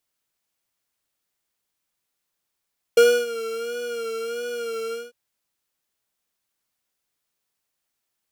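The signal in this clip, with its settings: synth patch with vibrato A#4, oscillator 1 square, interval +19 st, detune 18 cents, oscillator 2 level -1.5 dB, sub -14.5 dB, noise -27.5 dB, filter highpass, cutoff 290 Hz, Q 2.6, filter envelope 0.5 oct, attack 4.6 ms, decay 0.28 s, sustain -15.5 dB, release 0.19 s, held 1.96 s, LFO 1.5 Hz, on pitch 59 cents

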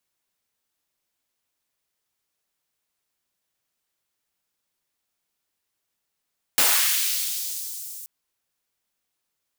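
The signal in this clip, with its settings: swept filtered noise white, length 1.48 s highpass, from 130 Hz, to 7700 Hz, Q 0.95, linear, gain ramp -20.5 dB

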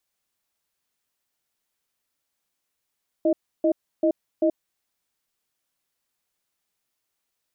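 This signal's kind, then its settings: cadence 329 Hz, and 622 Hz, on 0.08 s, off 0.31 s, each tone -19.5 dBFS 1.52 s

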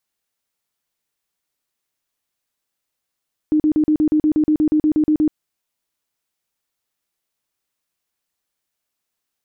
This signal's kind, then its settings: tone bursts 306 Hz, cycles 24, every 0.12 s, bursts 15, -12 dBFS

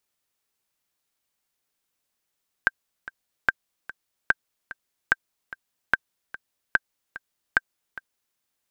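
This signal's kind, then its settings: metronome 147 bpm, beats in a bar 2, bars 7, 1570 Hz, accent 17.5 dB -4.5 dBFS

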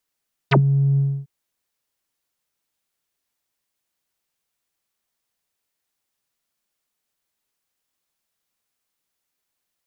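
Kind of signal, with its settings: synth note square C#3 12 dB/oct, low-pass 190 Hz, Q 10, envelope 5 oct, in 0.06 s, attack 16 ms, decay 0.09 s, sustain -8 dB, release 0.28 s, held 0.47 s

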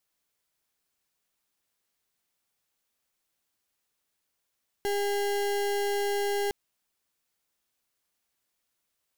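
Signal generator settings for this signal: pulse 405 Hz, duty 33% -28 dBFS 1.66 s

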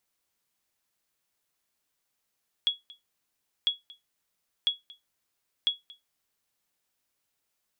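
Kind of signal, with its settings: sonar ping 3350 Hz, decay 0.17 s, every 1.00 s, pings 4, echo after 0.23 s, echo -23 dB -16.5 dBFS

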